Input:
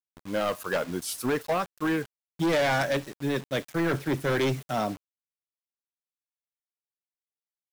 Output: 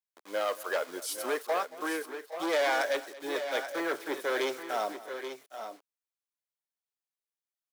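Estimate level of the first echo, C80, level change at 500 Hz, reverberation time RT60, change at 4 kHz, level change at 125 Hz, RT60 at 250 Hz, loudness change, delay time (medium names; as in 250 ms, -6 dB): -18.0 dB, no reverb, -2.5 dB, no reverb, -2.0 dB, under -30 dB, no reverb, -4.0 dB, 227 ms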